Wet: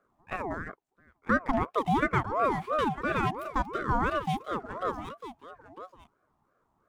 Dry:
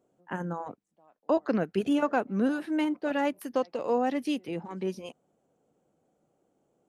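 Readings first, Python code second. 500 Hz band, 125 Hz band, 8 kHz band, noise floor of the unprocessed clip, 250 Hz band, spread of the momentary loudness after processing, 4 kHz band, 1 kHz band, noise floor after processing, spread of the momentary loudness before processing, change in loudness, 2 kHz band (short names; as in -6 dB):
-3.0 dB, +5.5 dB, n/a, -75 dBFS, -5.0 dB, 19 LU, -0.5 dB, +5.5 dB, -75 dBFS, 12 LU, 0.0 dB, +5.5 dB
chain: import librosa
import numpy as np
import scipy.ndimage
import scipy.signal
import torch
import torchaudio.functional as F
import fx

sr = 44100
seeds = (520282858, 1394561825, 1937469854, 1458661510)

y = scipy.ndimage.median_filter(x, 9, mode='constant')
y = y + 10.0 ** (-12.5 / 20.0) * np.pad(y, (int(951 * sr / 1000.0), 0))[:len(y)]
y = fx.ring_lfo(y, sr, carrier_hz=690.0, swing_pct=35, hz=2.9)
y = y * librosa.db_to_amplitude(2.5)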